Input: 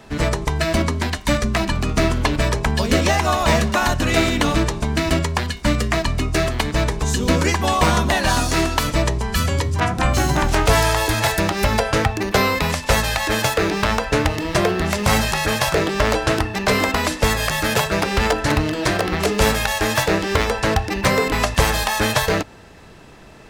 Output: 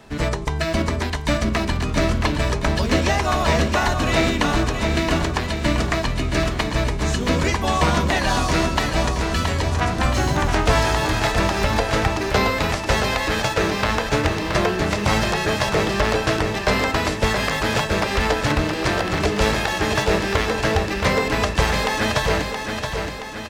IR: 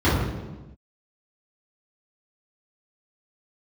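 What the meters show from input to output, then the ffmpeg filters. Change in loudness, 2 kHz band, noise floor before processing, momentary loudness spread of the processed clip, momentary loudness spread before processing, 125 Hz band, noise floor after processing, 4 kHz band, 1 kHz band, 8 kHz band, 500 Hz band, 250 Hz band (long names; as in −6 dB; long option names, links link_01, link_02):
−1.5 dB, −1.0 dB, −41 dBFS, 3 LU, 4 LU, −1.5 dB, −27 dBFS, −1.5 dB, −1.0 dB, −4.5 dB, −1.0 dB, −1.0 dB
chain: -filter_complex "[0:a]acrossover=split=7000[link_01][link_02];[link_02]acompressor=threshold=-40dB:ratio=4:attack=1:release=60[link_03];[link_01][link_03]amix=inputs=2:normalize=0,aecho=1:1:673|1346|2019|2692|3365|4038|4711:0.501|0.281|0.157|0.088|0.0493|0.0276|0.0155,volume=-2.5dB"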